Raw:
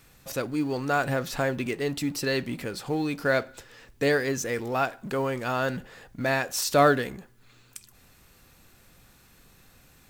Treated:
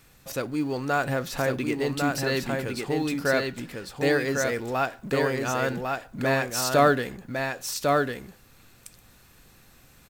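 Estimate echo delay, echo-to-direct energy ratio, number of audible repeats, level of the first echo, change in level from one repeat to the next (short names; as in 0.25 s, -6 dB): 1.101 s, -3.5 dB, 1, -3.5 dB, no steady repeat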